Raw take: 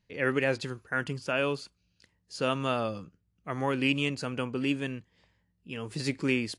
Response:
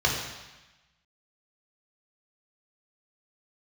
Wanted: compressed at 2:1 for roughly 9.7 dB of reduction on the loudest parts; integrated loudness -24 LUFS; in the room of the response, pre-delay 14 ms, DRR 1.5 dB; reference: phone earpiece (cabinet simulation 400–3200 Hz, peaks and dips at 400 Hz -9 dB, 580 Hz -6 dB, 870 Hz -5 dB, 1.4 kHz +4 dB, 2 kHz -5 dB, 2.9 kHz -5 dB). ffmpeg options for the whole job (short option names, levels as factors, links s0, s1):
-filter_complex "[0:a]acompressor=threshold=0.01:ratio=2,asplit=2[s0][s1];[1:a]atrim=start_sample=2205,adelay=14[s2];[s1][s2]afir=irnorm=-1:irlink=0,volume=0.158[s3];[s0][s3]amix=inputs=2:normalize=0,highpass=400,equalizer=f=400:t=q:w=4:g=-9,equalizer=f=580:t=q:w=4:g=-6,equalizer=f=870:t=q:w=4:g=-5,equalizer=f=1400:t=q:w=4:g=4,equalizer=f=2000:t=q:w=4:g=-5,equalizer=f=2900:t=q:w=4:g=-5,lowpass=f=3200:w=0.5412,lowpass=f=3200:w=1.3066,volume=7.94"